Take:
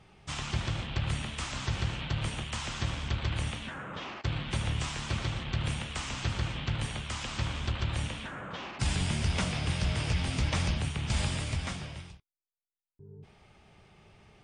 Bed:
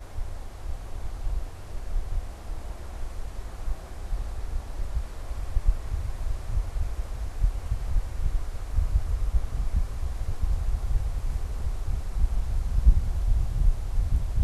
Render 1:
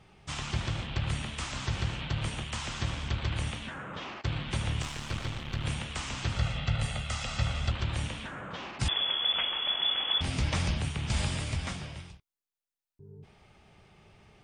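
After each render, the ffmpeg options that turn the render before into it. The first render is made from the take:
-filter_complex "[0:a]asettb=1/sr,asplit=3[a][b][c];[a]atrim=end=4.824[d];[b]atrim=start=4.82:end=5.65,asetpts=PTS-STARTPTS,afade=t=in:d=0.004:c=qsin,afade=t=out:st=0.826:d=0.004:c=qsin,aeval=exprs='if(lt(val(0),0),0.447*val(0),val(0))':c=same[e];[c]atrim=start=5.646[f];[d][e]acrossfade=d=0.004:c1=hsin:c2=qsin[g];[g][f]acrossfade=d=0.004:c1=qsin:c2=hsin,asettb=1/sr,asplit=3[h][i][j];[h]atrim=end=6.364[k];[i]atrim=start=6.36:end=7.71,asetpts=PTS-STARTPTS,afade=t=in:d=0.004:c=qsin,afade=t=out:st=1.346:d=0.004:c=qsin,aecho=1:1:1.5:0.63,atrim=end_sample=59535[l];[j]atrim=start=7.706[m];[k][l]acrossfade=d=0.004:c1=hsin:c2=qsin[n];[n][m]acrossfade=d=0.004:c1=qsin:c2=hsin,asettb=1/sr,asplit=3[o][p][q];[o]atrim=end=8.884[r];[p]atrim=start=8.88:end=10.21,asetpts=PTS-STARTPTS,afade=t=in:d=0.004:c=qsin,afade=t=out:st=1.326:d=0.004:c=qsin,lowpass=f=3k:t=q:w=0.5098,lowpass=f=3k:t=q:w=0.6013,lowpass=f=3k:t=q:w=0.9,lowpass=f=3k:t=q:w=2.563,afreqshift=-3500[s];[q]atrim=start=10.206[t];[r][s]acrossfade=d=0.004:c1=hsin:c2=qsin[u];[u][t]acrossfade=d=0.004:c1=qsin:c2=hsin"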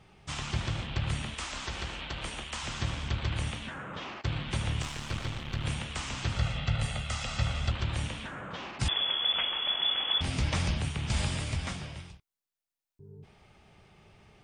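-filter_complex "[0:a]asettb=1/sr,asplit=3[a][b][c];[a]atrim=end=1.344[d];[b]atrim=start=1.34:end=2.63,asetpts=PTS-STARTPTS,afade=t=in:d=0.004:c=qsin,afade=t=out:st=1.286:d=0.004:c=qsin,equalizer=f=120:t=o:w=1.2:g=-15[e];[c]atrim=start=2.626[f];[d][e]acrossfade=d=0.004:c1=hsin:c2=qsin[g];[g][f]acrossfade=d=0.004:c1=qsin:c2=hsin"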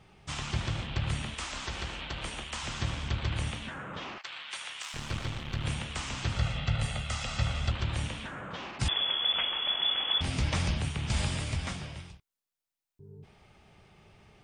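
-filter_complex "[0:a]asettb=1/sr,asplit=3[a][b][c];[a]atrim=end=4.184[d];[b]atrim=start=4.18:end=4.94,asetpts=PTS-STARTPTS,afade=t=in:d=0.004:c=qsin,afade=t=out:st=0.756:d=0.004:c=qsin,highpass=1.2k[e];[c]atrim=start=4.936[f];[d][e]acrossfade=d=0.004:c1=hsin:c2=qsin[g];[g][f]acrossfade=d=0.004:c1=qsin:c2=hsin"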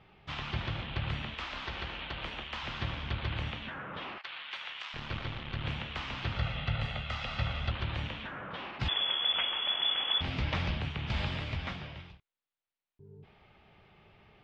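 -af "lowpass=f=3.8k:w=0.5412,lowpass=f=3.8k:w=1.3066,lowshelf=f=350:g=-4"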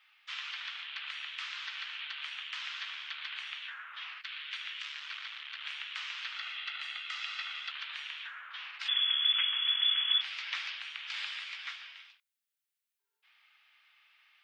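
-af "highpass=f=1.4k:w=0.5412,highpass=f=1.4k:w=1.3066,highshelf=f=6k:g=9"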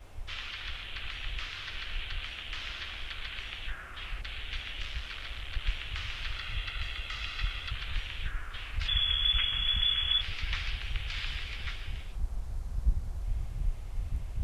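-filter_complex "[1:a]volume=-9.5dB[a];[0:a][a]amix=inputs=2:normalize=0"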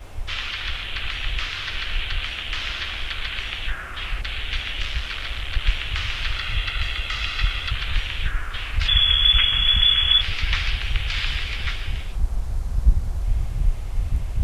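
-af "volume=11dB"

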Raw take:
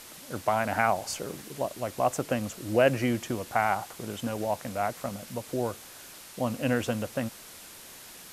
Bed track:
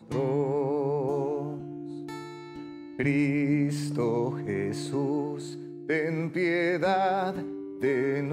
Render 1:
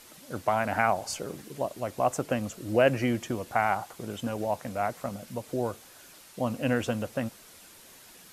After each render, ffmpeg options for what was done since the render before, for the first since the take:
-af "afftdn=nr=6:nf=-47"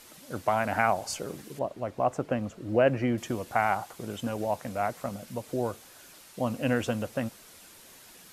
-filter_complex "[0:a]asettb=1/sr,asplit=3[a][b][c];[a]atrim=end=1.594[d];[b]atrim=start=1.59:end=3.18,asetpts=PTS-STARTPTS,afade=t=in:d=0.004:c=qsin,afade=t=out:st=1.586:d=0.004:c=qsin,lowpass=f=1.7k:p=1[e];[c]atrim=start=3.176[f];[d][e]acrossfade=d=0.004:c1=hsin:c2=qsin[g];[g][f]acrossfade=d=0.004:c1=qsin:c2=hsin"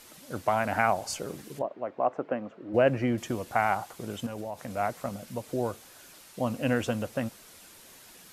-filter_complex "[0:a]asplit=3[a][b][c];[a]afade=t=out:st=1.61:d=0.02[d];[b]highpass=270,lowpass=2.1k,afade=t=in:st=1.61:d=0.02,afade=t=out:st=2.73:d=0.02[e];[c]afade=t=in:st=2.73:d=0.02[f];[d][e][f]amix=inputs=3:normalize=0,asettb=1/sr,asplit=3[g][h][i];[g]atrim=end=4.264[j];[h]atrim=start=4.26:end=4.77,asetpts=PTS-STARTPTS,afade=t=in:d=0.004:c=qsin,afade=t=out:st=0.506:d=0.004:c=qsin,acompressor=threshold=-32dB:ratio=6:attack=3.2:release=140:knee=1:detection=peak[k];[i]atrim=start=4.766[l];[j][k]acrossfade=d=0.004:c1=hsin:c2=qsin[m];[m][l]acrossfade=d=0.004:c1=qsin:c2=hsin"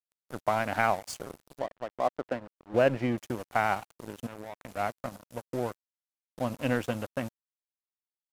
-af "aeval=exprs='sgn(val(0))*max(abs(val(0))-0.0126,0)':c=same"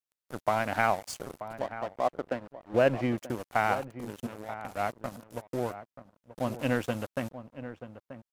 -filter_complex "[0:a]asplit=2[a][b];[b]adelay=932.9,volume=-12dB,highshelf=f=4k:g=-21[c];[a][c]amix=inputs=2:normalize=0"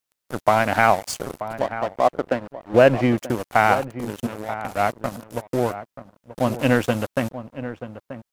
-af "volume=10dB,alimiter=limit=-1dB:level=0:latency=1"

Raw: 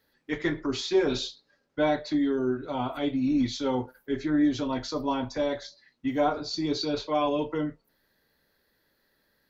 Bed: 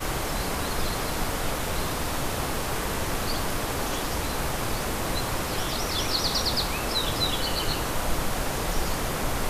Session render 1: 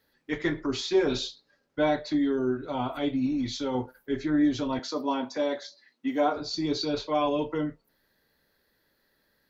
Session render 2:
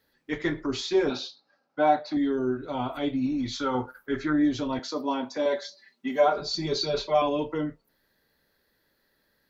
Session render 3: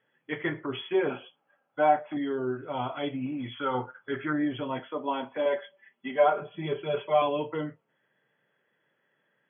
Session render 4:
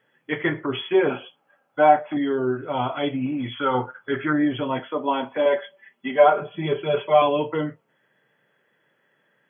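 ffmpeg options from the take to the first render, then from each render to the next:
-filter_complex "[0:a]asettb=1/sr,asplit=3[a][b][c];[a]atrim=end=3.264[d];[b]atrim=start=3.26:end=3.75,asetpts=PTS-STARTPTS,afade=t=in:d=0.004:c=qsin,afade=t=out:st=0.486:d=0.004:c=qsin,acompressor=threshold=-25dB:ratio=6:attack=3.2:release=140:knee=1:detection=peak[e];[c]atrim=start=3.746[f];[d][e]acrossfade=d=0.004:c1=hsin:c2=qsin[g];[g][f]acrossfade=d=0.004:c1=qsin:c2=hsin,asettb=1/sr,asplit=3[h][i][j];[h]atrim=end=4.794[k];[i]atrim=start=4.79:end=6.36,asetpts=PTS-STARTPTS,afade=t=in:d=0.004:c=qsin,afade=t=out:st=1.566:d=0.004:c=qsin,highpass=f=200:w=0.5412,highpass=f=200:w=1.3066[l];[j]atrim=start=6.356[m];[k][l]acrossfade=d=0.004:c1=hsin:c2=qsin[n];[n][m]acrossfade=d=0.004:c1=qsin:c2=hsin"
-filter_complex "[0:a]asettb=1/sr,asplit=3[a][b][c];[a]atrim=end=1.104[d];[b]atrim=start=1.1:end=2.17,asetpts=PTS-STARTPTS,afade=t=in:d=0.004:c=qsin,afade=t=out:st=1.066:d=0.004:c=qsin,highpass=200,equalizer=f=400:t=q:w=4:g=-8,equalizer=f=770:t=q:w=4:g=10,equalizer=f=1.3k:t=q:w=4:g=6,equalizer=f=1.9k:t=q:w=4:g=-6,equalizer=f=3.3k:t=q:w=4:g=-6,lowpass=f=5.5k:w=0.5412,lowpass=f=5.5k:w=1.3066[e];[c]atrim=start=2.166[f];[d][e]acrossfade=d=0.004:c1=hsin:c2=qsin[g];[g][f]acrossfade=d=0.004:c1=qsin:c2=hsin,asettb=1/sr,asplit=3[h][i][j];[h]atrim=end=3.524[k];[i]atrim=start=3.52:end=4.33,asetpts=PTS-STARTPTS,afade=t=in:d=0.004:c=qsin,afade=t=out:st=0.806:d=0.004:c=qsin,equalizer=f=1.3k:w=2.2:g=14.5[l];[j]atrim=start=4.326[m];[k][l]acrossfade=d=0.004:c1=hsin:c2=qsin[n];[n][m]acrossfade=d=0.004:c1=qsin:c2=hsin,asettb=1/sr,asplit=3[o][p][q];[o]atrim=end=5.454[r];[p]atrim=start=5.45:end=7.22,asetpts=PTS-STARTPTS,afade=t=in:d=0.004:c=qsin,afade=t=out:st=1.766:d=0.004:c=qsin,aecho=1:1:5.1:0.94,atrim=end_sample=78057[s];[q]atrim=start=7.216[t];[r][s]acrossfade=d=0.004:c1=hsin:c2=qsin[u];[u][t]acrossfade=d=0.004:c1=qsin:c2=hsin"
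-af "afftfilt=real='re*between(b*sr/4096,110,3400)':imag='im*between(b*sr/4096,110,3400)':win_size=4096:overlap=0.75,equalizer=f=260:w=1.6:g=-6.5"
-af "volume=7dB"

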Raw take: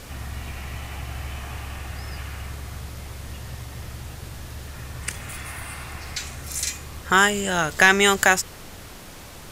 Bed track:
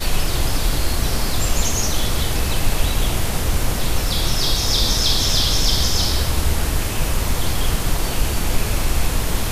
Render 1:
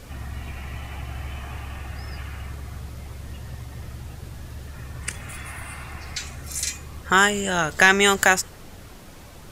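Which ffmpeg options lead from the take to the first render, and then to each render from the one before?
-af "afftdn=nr=6:nf=-41"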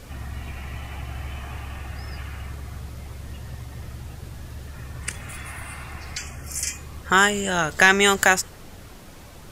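-filter_complex "[0:a]asettb=1/sr,asplit=3[a][b][c];[a]atrim=end=6.174[d];[b]atrim=start=6.17:end=6.78,asetpts=PTS-STARTPTS,afade=t=in:d=0.004:c=qsin,afade=t=out:st=0.606:d=0.004:c=qsin,asuperstop=centerf=3900:order=8:qfactor=3.3[e];[c]atrim=start=6.776[f];[d][e]acrossfade=d=0.004:c1=hsin:c2=qsin[g];[g][f]acrossfade=d=0.004:c1=qsin:c2=hsin"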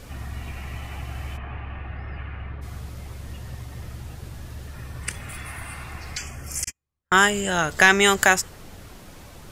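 -filter_complex "[0:a]asplit=3[a][b][c];[a]afade=t=out:st=1.36:d=0.02[d];[b]lowpass=f=2.7k:w=0.5412,lowpass=f=2.7k:w=1.3066,afade=t=in:st=1.36:d=0.02,afade=t=out:st=2.61:d=0.02[e];[c]afade=t=in:st=2.61:d=0.02[f];[d][e][f]amix=inputs=3:normalize=0,asettb=1/sr,asplit=3[g][h][i];[g]atrim=end=4.744[j];[h]atrim=start=4.74:end=5.53,asetpts=PTS-STARTPTS,afade=t=in:d=0.004:c=qsin,afade=t=out:st=0.786:d=0.004:c=qsin,bandreject=f=6.8k:w=12[k];[i]atrim=start=5.526[l];[j][k]acrossfade=d=0.004:c1=hsin:c2=qsin[m];[m][l]acrossfade=d=0.004:c1=qsin:c2=hsin,asettb=1/sr,asplit=3[n][o][p];[n]atrim=end=6.644[q];[o]atrim=start=6.64:end=7.3,asetpts=PTS-STARTPTS,afade=t=in:d=0.004:c=qsin,afade=t=out:st=0.656:d=0.004:c=qsin,agate=range=-48dB:threshold=-27dB:ratio=16:release=100:detection=peak[r];[p]atrim=start=7.296[s];[q][r]acrossfade=d=0.004:c1=hsin:c2=qsin[t];[t][s]acrossfade=d=0.004:c1=qsin:c2=hsin"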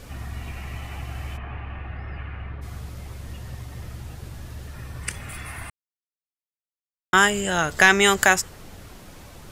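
-filter_complex "[0:a]asplit=3[a][b][c];[a]atrim=end=5.7,asetpts=PTS-STARTPTS,afade=t=out:st=5.696:d=0.004:c=hsin[d];[b]atrim=start=5.7:end=7.13,asetpts=PTS-STARTPTS,volume=0[e];[c]atrim=start=7.13,asetpts=PTS-STARTPTS,afade=t=in:d=0.004:c=hsin[f];[d][e][f]concat=n=3:v=0:a=1"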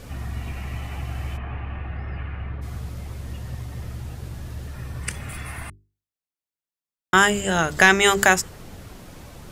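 -af "equalizer=f=150:w=0.31:g=4.5,bandreject=f=50:t=h:w=6,bandreject=f=100:t=h:w=6,bandreject=f=150:t=h:w=6,bandreject=f=200:t=h:w=6,bandreject=f=250:t=h:w=6,bandreject=f=300:t=h:w=6,bandreject=f=350:t=h:w=6,bandreject=f=400:t=h:w=6"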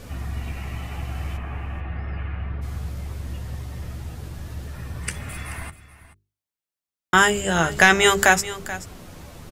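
-filter_complex "[0:a]asplit=2[a][b];[b]adelay=12,volume=-10dB[c];[a][c]amix=inputs=2:normalize=0,aecho=1:1:432:0.168"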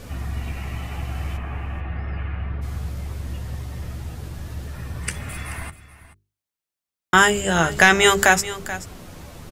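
-af "volume=1.5dB,alimiter=limit=-1dB:level=0:latency=1"

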